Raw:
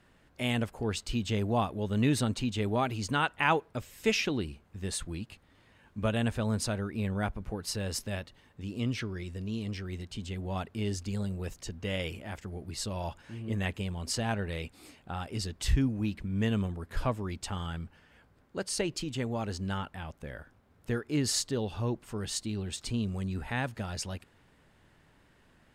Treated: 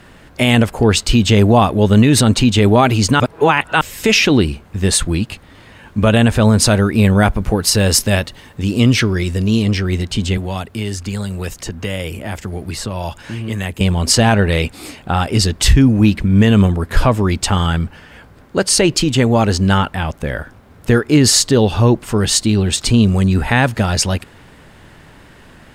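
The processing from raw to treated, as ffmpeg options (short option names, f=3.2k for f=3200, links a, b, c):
-filter_complex "[0:a]asettb=1/sr,asplit=3[a][b][c];[a]atrim=end=6.664[d];[b]atrim=start=6.66:end=9.62,asetpts=PTS-STARTPTS,afade=t=in:d=0.004:c=qsin,afade=t=out:st=2.956:d=0.004:c=qsin,highshelf=f=5.5k:g=5.5[e];[c]atrim=start=9.616[f];[d][e]acrossfade=d=0.004:c1=hsin:c2=qsin[g];[g][f]acrossfade=d=0.004:c1=qsin:c2=hsin,asettb=1/sr,asplit=3[h][i][j];[h]atrim=end=10.374[k];[i]atrim=start=10.37:end=13.81,asetpts=PTS-STARTPTS,afade=t=in:d=0.004:c=qsin,afade=t=out:st=3.436:d=0.004:c=qsin,acrossover=split=88|960|2200|7800[l][m][n][o][p];[l]acompressor=threshold=-54dB:ratio=3[q];[m]acompressor=threshold=-46dB:ratio=3[r];[n]acompressor=threshold=-56dB:ratio=3[s];[o]acompressor=threshold=-56dB:ratio=3[t];[p]acompressor=threshold=-56dB:ratio=3[u];[q][r][s][t][u]amix=inputs=5:normalize=0[v];[j]atrim=start=13.806[w];[k][v]acrossfade=d=0.004:c1=hsin:c2=qsin[x];[x][w]acrossfade=d=0.004:c1=qsin:c2=hsin,asplit=3[y][z][aa];[y]atrim=end=3.202[ab];[z]atrim=start=3.198:end=3.812,asetpts=PTS-STARTPTS,areverse[ac];[aa]atrim=start=3.808[ad];[ab][ac]acrossfade=d=0.004:c1=hsin:c2=hsin[ae];[ae][ad]acrossfade=d=0.004:c1=hsin:c2=hsin,alimiter=level_in=21.5dB:limit=-1dB:release=50:level=0:latency=1,volume=-1dB"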